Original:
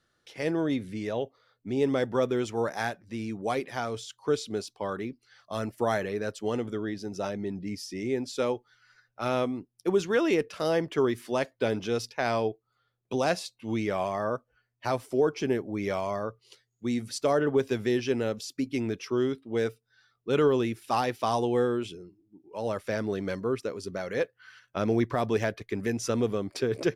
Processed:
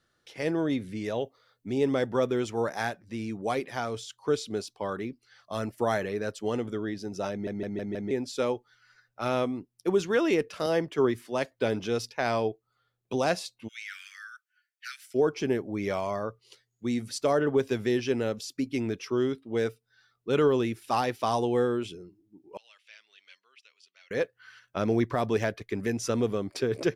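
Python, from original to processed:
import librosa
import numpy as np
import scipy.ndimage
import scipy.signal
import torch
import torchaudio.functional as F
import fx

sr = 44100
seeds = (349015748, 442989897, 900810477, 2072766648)

y = fx.high_shelf(x, sr, hz=4900.0, db=5.5, at=(1.04, 1.78))
y = fx.band_widen(y, sr, depth_pct=70, at=(10.66, 11.51))
y = fx.steep_highpass(y, sr, hz=1400.0, slope=96, at=(13.67, 15.14), fade=0.02)
y = fx.ladder_bandpass(y, sr, hz=3200.0, resonance_pct=55, at=(22.57, 24.11))
y = fx.edit(y, sr, fx.stutter_over(start_s=7.31, slice_s=0.16, count=5), tone=tone)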